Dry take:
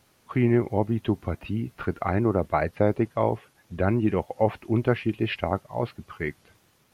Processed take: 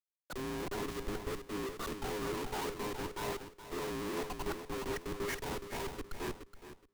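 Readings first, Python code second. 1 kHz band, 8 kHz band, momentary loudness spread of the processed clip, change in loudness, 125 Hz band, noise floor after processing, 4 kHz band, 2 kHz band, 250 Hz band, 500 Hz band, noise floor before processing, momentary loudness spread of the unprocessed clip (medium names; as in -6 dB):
-11.0 dB, no reading, 5 LU, -13.0 dB, -20.0 dB, -69 dBFS, -1.5 dB, -8.0 dB, -16.0 dB, -13.0 dB, -64 dBFS, 10 LU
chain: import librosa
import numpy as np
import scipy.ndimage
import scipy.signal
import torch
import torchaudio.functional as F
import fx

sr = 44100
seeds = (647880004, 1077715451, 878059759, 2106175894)

y = fx.band_invert(x, sr, width_hz=500)
y = scipy.signal.sosfilt(scipy.signal.butter(4, 290.0, 'highpass', fs=sr, output='sos'), y)
y = fx.over_compress(y, sr, threshold_db=-27.0, ratio=-0.5)
y = scipy.signal.savgol_filter(y, 41, 4, mode='constant')
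y = fx.level_steps(y, sr, step_db=19)
y = fx.schmitt(y, sr, flips_db=-44.0)
y = fx.echo_feedback(y, sr, ms=421, feedback_pct=39, wet_db=-6)
y = fx.band_widen(y, sr, depth_pct=100)
y = F.gain(torch.from_numpy(y), 3.0).numpy()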